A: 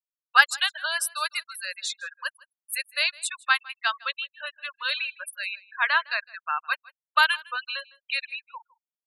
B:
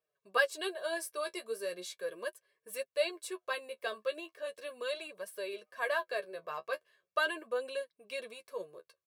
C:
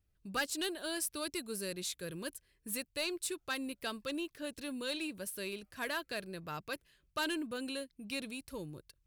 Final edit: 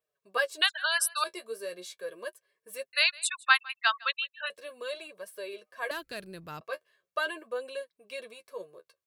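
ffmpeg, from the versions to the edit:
-filter_complex "[0:a]asplit=2[a][b];[1:a]asplit=4[c][d][e][f];[c]atrim=end=0.622[g];[a]atrim=start=0.618:end=1.242[h];[d]atrim=start=1.238:end=2.932[i];[b]atrim=start=2.928:end=4.502[j];[e]atrim=start=4.498:end=5.912[k];[2:a]atrim=start=5.908:end=6.612[l];[f]atrim=start=6.608[m];[g][h]acrossfade=d=0.004:c1=hsin:c2=hsin[n];[n][i]acrossfade=d=0.004:c1=hsin:c2=hsin[o];[o][j]acrossfade=d=0.004:c1=hsin:c2=hsin[p];[p][k]acrossfade=d=0.004:c1=hsin:c2=hsin[q];[q][l]acrossfade=d=0.004:c1=hsin:c2=hsin[r];[r][m]acrossfade=d=0.004:c1=hsin:c2=hsin"

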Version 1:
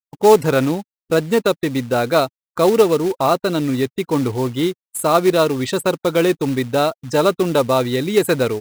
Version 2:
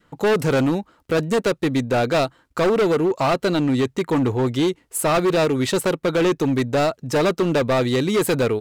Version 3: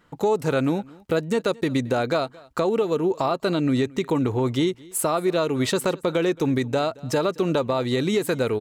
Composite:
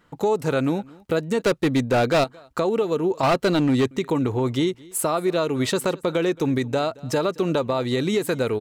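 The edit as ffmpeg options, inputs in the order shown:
-filter_complex "[1:a]asplit=2[a][b];[2:a]asplit=3[c][d][e];[c]atrim=end=1.422[f];[a]atrim=start=1.418:end=2.242[g];[d]atrim=start=2.238:end=3.232[h];[b]atrim=start=3.228:end=3.912[i];[e]atrim=start=3.908[j];[f][g]acrossfade=d=0.004:c1=hsin:c2=hsin[k];[k][h]acrossfade=d=0.004:c1=hsin:c2=hsin[l];[l][i]acrossfade=d=0.004:c1=hsin:c2=hsin[m];[m][j]acrossfade=d=0.004:c1=hsin:c2=hsin"

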